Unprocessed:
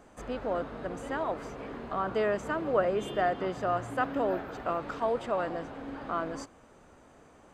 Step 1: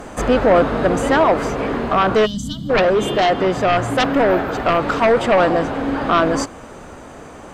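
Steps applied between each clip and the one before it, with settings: sine folder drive 11 dB, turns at -13.5 dBFS; gain riding 2 s; time-frequency box 2.26–2.70 s, 290–2900 Hz -29 dB; trim +3.5 dB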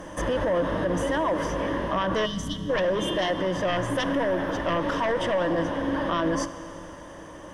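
rippled EQ curve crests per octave 1.2, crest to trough 11 dB; peak limiter -11 dBFS, peak gain reduction 10 dB; Schroeder reverb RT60 3 s, combs from 27 ms, DRR 13 dB; trim -7 dB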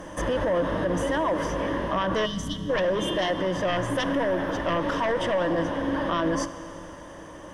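no audible change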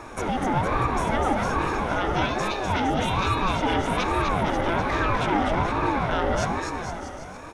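on a send: bouncing-ball echo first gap 250 ms, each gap 0.85×, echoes 5; on the sum: ring modulator with a swept carrier 440 Hz, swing 45%, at 1.2 Hz; trim +2.5 dB

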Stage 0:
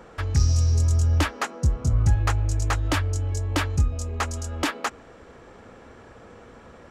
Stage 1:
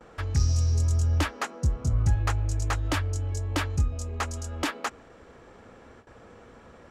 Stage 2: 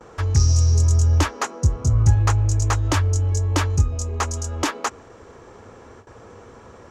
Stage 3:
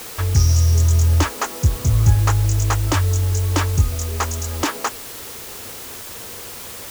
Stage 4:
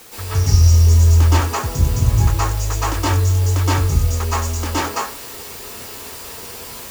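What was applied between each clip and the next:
gate with hold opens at -38 dBFS; trim -3.5 dB
fifteen-band graphic EQ 100 Hz +8 dB, 400 Hz +6 dB, 1 kHz +6 dB, 6.3 kHz +9 dB; trim +2.5 dB
word length cut 6-bit, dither triangular; trim +1.5 dB
reverberation RT60 0.45 s, pre-delay 114 ms, DRR -10 dB; trim -8.5 dB

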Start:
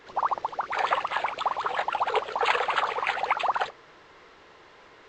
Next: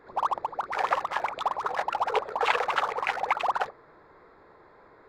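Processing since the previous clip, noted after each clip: local Wiener filter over 15 samples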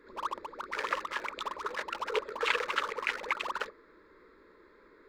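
static phaser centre 310 Hz, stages 4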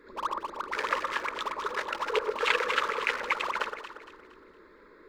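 echo whose repeats swap between lows and highs 116 ms, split 1.6 kHz, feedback 62%, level -5 dB; trim +3 dB

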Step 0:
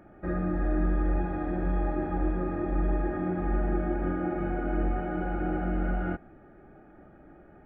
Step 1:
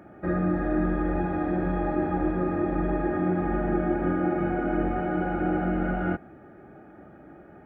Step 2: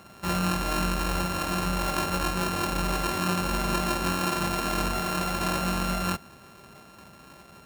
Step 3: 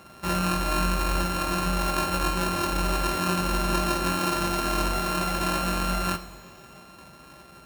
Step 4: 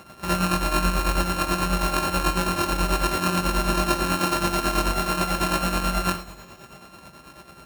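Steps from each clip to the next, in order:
high-pass 83 Hz 12 dB/octave; trim +5 dB
sorted samples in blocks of 32 samples; peaking EQ 310 Hz -11 dB 0.38 oct
reverberation, pre-delay 3 ms, DRR 6.5 dB
tremolo 9.2 Hz, depth 58%; trim +5 dB

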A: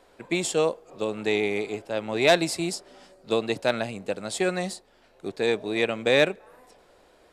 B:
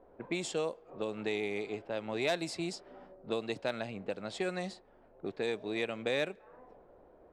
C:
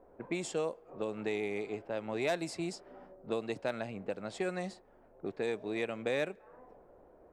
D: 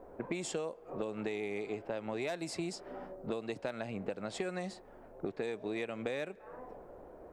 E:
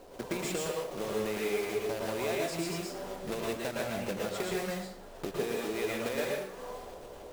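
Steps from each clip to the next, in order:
compression 2:1, threshold -39 dBFS, peak gain reduction 14 dB; level-controlled noise filter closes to 680 Hz, open at -29.5 dBFS
peaking EQ 3.7 kHz -6 dB 1 oct
compression 6:1, threshold -42 dBFS, peak gain reduction 13.5 dB; trim +7.5 dB
block-companded coder 3-bit; plate-style reverb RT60 0.58 s, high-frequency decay 0.75×, pre-delay 100 ms, DRR -3 dB

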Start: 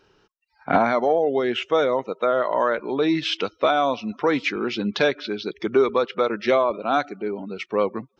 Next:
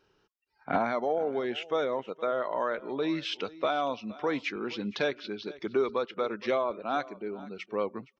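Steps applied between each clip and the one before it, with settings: delay 467 ms -19.5 dB; trim -9 dB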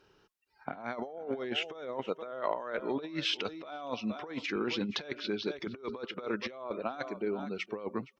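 compressor with a negative ratio -34 dBFS, ratio -0.5; Chebyshev shaper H 3 -31 dB, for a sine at -17 dBFS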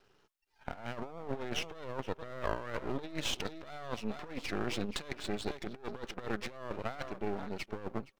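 half-wave rectifier; trim +1 dB

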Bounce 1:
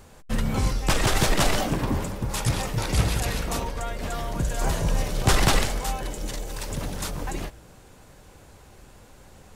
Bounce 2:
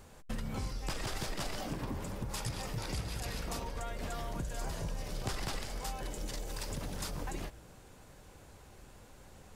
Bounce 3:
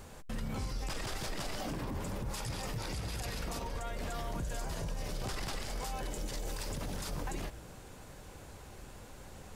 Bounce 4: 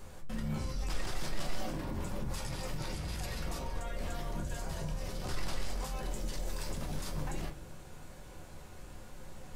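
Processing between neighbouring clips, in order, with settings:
dynamic bell 4.9 kHz, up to +6 dB, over -51 dBFS, Q 6; compression 6:1, threshold -29 dBFS, peak gain reduction 14 dB; trim -5.5 dB
peak limiter -34.5 dBFS, peak gain reduction 10.5 dB; trim +5 dB
simulated room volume 120 m³, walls furnished, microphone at 0.99 m; trim -3 dB

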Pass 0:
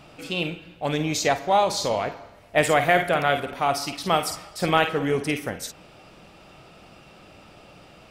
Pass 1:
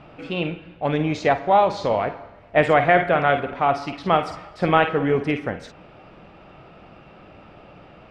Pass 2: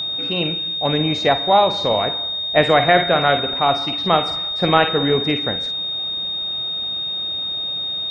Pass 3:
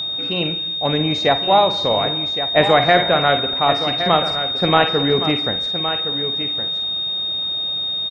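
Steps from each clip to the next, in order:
low-pass 2.2 kHz 12 dB/octave; trim +3.5 dB
whistle 3.7 kHz -24 dBFS; trim +2 dB
delay 1116 ms -10 dB

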